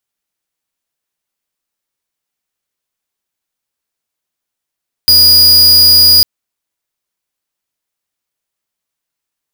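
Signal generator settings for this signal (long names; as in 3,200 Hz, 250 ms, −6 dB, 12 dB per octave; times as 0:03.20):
tone square 4,890 Hz −5.5 dBFS 1.15 s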